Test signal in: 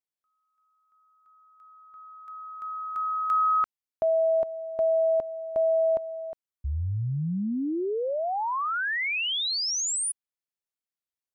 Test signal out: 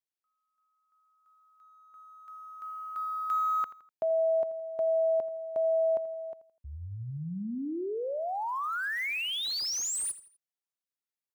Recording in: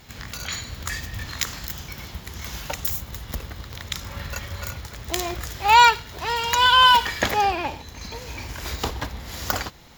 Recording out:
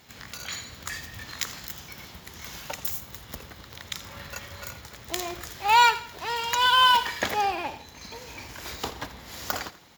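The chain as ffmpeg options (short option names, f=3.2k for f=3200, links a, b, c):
-filter_complex "[0:a]highpass=f=180:p=1,acrossover=split=1600[a][b];[b]acrusher=bits=4:mode=log:mix=0:aa=0.000001[c];[a][c]amix=inputs=2:normalize=0,aecho=1:1:83|166|249:0.158|0.0586|0.0217,volume=-4.5dB"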